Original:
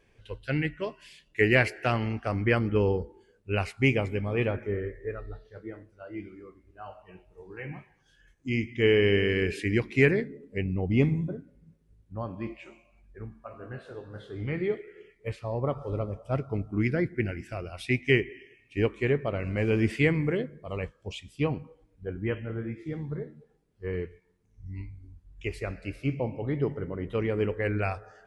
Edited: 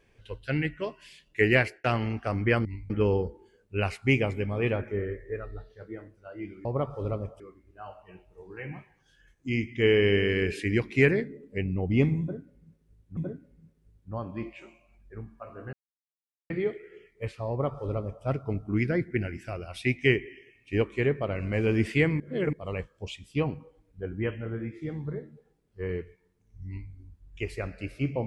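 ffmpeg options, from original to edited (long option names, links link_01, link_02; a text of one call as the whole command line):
ffmpeg -i in.wav -filter_complex "[0:a]asplit=11[link_01][link_02][link_03][link_04][link_05][link_06][link_07][link_08][link_09][link_10][link_11];[link_01]atrim=end=1.84,asetpts=PTS-STARTPTS,afade=type=out:start_time=1.56:duration=0.28[link_12];[link_02]atrim=start=1.84:end=2.652,asetpts=PTS-STARTPTS,afade=type=in:duration=0.004:curve=hsin[link_13];[link_03]atrim=start=24.708:end=24.962[link_14];[link_04]atrim=start=2.648:end=6.402[link_15];[link_05]atrim=start=15.528:end=16.282[link_16];[link_06]atrim=start=6.398:end=12.172[link_17];[link_07]atrim=start=11.208:end=13.77,asetpts=PTS-STARTPTS,afade=type=out:start_time=2.558:duration=0.004:curve=hsin[link_18];[link_08]atrim=start=13.77:end=14.54,asetpts=PTS-STARTPTS,volume=0[link_19];[link_09]atrim=start=14.54:end=20.242,asetpts=PTS-STARTPTS,afade=type=in:duration=0.004:curve=hsin[link_20];[link_10]atrim=start=20.238:end=20.572,asetpts=PTS-STARTPTS,areverse[link_21];[link_11]atrim=start=20.568[link_22];[link_12][link_13]concat=n=2:v=0:a=1[link_23];[link_23][link_14]acrossfade=duration=0.004:curve1=hsin:curve2=hsin[link_24];[link_24][link_15]acrossfade=duration=0.004:curve1=hsin:curve2=hsin[link_25];[link_25][link_16]acrossfade=duration=0.004:curve1=hsin:curve2=hsin[link_26];[link_26][link_17]acrossfade=duration=0.004:curve1=hsin:curve2=hsin[link_27];[link_18][link_19][link_20]concat=n=3:v=0:a=1[link_28];[link_27][link_28]acrossfade=duration=0.004:curve1=hsin:curve2=hsin[link_29];[link_29][link_21]acrossfade=duration=0.004:curve1=hsin:curve2=hsin[link_30];[link_30][link_22]acrossfade=duration=0.004:curve1=hsin:curve2=hsin" out.wav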